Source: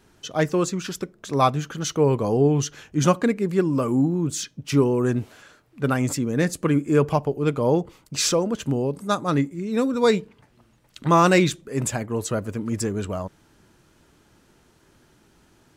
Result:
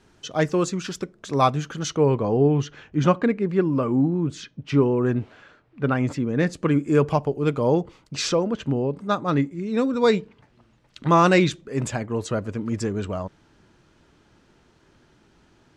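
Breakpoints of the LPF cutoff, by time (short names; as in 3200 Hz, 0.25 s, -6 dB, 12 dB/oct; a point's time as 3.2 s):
1.79 s 7800 Hz
2.25 s 3100 Hz
6.28 s 3100 Hz
6.9 s 7400 Hz
7.56 s 7400 Hz
8.93 s 3000 Hz
9.59 s 5500 Hz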